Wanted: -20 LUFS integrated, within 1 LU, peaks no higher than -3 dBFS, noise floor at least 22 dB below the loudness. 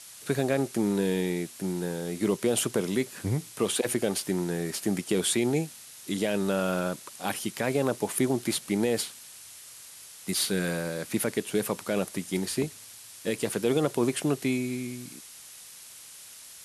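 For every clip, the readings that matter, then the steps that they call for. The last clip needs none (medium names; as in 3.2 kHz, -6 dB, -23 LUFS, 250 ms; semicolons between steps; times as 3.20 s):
noise floor -48 dBFS; noise floor target -51 dBFS; loudness -29.0 LUFS; peak level -13.0 dBFS; loudness target -20.0 LUFS
-> noise reduction 6 dB, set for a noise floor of -48 dBFS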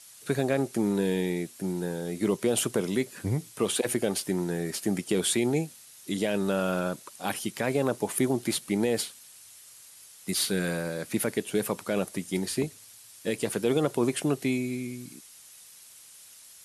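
noise floor -51 dBFS; loudness -29.0 LUFS; peak level -13.0 dBFS; loudness target -20.0 LUFS
-> trim +9 dB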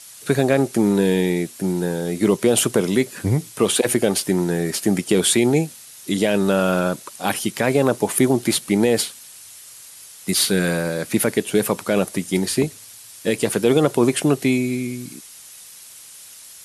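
loudness -20.0 LUFS; peak level -4.0 dBFS; noise floor -42 dBFS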